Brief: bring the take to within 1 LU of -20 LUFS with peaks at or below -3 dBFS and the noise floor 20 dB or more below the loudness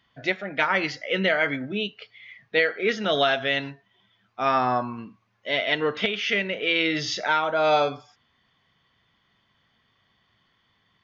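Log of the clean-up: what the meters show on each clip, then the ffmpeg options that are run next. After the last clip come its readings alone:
loudness -24.0 LUFS; peak -9.5 dBFS; loudness target -20.0 LUFS
-> -af "volume=4dB"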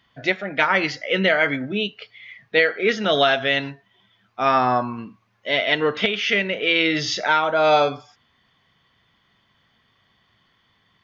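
loudness -20.0 LUFS; peak -5.5 dBFS; noise floor -64 dBFS

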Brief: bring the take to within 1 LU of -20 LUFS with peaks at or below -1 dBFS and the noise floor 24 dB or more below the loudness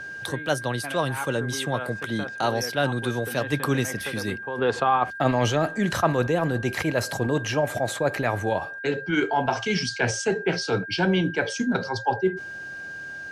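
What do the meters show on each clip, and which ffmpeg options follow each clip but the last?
steady tone 1600 Hz; tone level -34 dBFS; loudness -25.5 LUFS; peak -7.0 dBFS; loudness target -20.0 LUFS
-> -af "bandreject=f=1.6k:w=30"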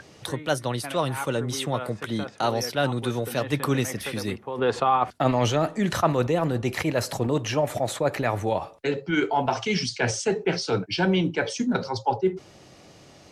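steady tone none; loudness -26.0 LUFS; peak -7.5 dBFS; loudness target -20.0 LUFS
-> -af "volume=6dB"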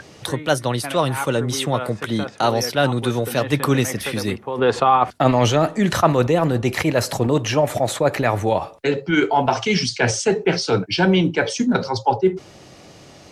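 loudness -20.0 LUFS; peak -1.5 dBFS; noise floor -45 dBFS

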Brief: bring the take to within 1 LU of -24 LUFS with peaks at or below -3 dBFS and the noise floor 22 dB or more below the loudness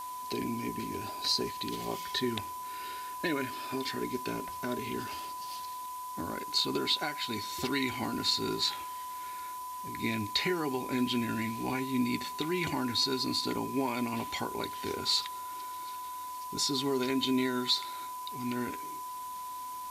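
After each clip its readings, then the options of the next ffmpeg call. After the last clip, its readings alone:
steady tone 1000 Hz; tone level -38 dBFS; noise floor -41 dBFS; noise floor target -55 dBFS; loudness -33.0 LUFS; peak -15.5 dBFS; loudness target -24.0 LUFS
-> -af "bandreject=f=1k:w=30"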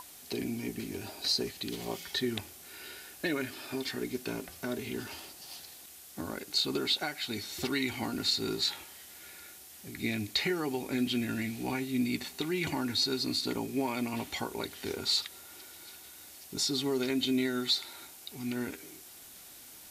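steady tone none; noise floor -51 dBFS; noise floor target -55 dBFS
-> -af "afftdn=nr=6:nf=-51"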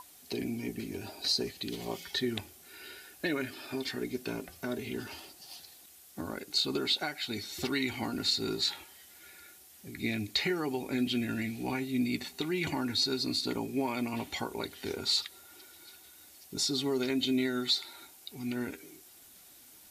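noise floor -56 dBFS; loudness -33.0 LUFS; peak -16.0 dBFS; loudness target -24.0 LUFS
-> -af "volume=9dB"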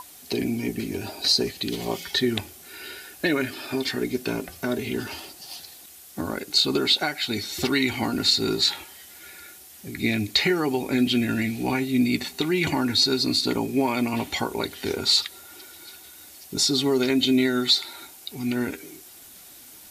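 loudness -24.0 LUFS; peak -7.0 dBFS; noise floor -47 dBFS

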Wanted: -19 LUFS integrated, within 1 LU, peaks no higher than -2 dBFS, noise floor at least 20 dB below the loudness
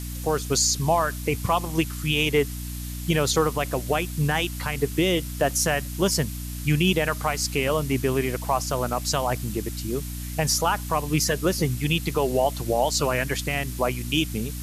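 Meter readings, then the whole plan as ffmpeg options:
hum 60 Hz; harmonics up to 300 Hz; hum level -31 dBFS; noise floor -33 dBFS; noise floor target -45 dBFS; loudness -24.5 LUFS; peak -10.0 dBFS; loudness target -19.0 LUFS
-> -af "bandreject=f=60:t=h:w=6,bandreject=f=120:t=h:w=6,bandreject=f=180:t=h:w=6,bandreject=f=240:t=h:w=6,bandreject=f=300:t=h:w=6"
-af "afftdn=nr=12:nf=-33"
-af "volume=5.5dB"

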